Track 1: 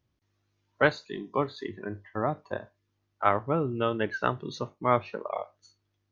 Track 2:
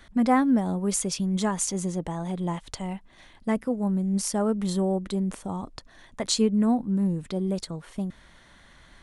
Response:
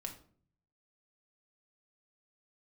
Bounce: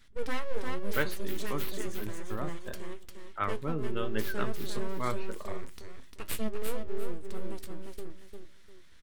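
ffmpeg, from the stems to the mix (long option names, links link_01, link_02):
-filter_complex "[0:a]adelay=150,volume=-0.5dB[link_01];[1:a]aeval=exprs='abs(val(0))':channel_layout=same,volume=-2.5dB,asplit=2[link_02][link_03];[link_03]volume=-5dB,aecho=0:1:350|700|1050|1400:1|0.25|0.0625|0.0156[link_04];[link_01][link_02][link_04]amix=inputs=3:normalize=0,equalizer=frequency=750:width_type=o:width=1.1:gain=-10,flanger=delay=8.5:depth=4.7:regen=65:speed=0.94:shape=triangular"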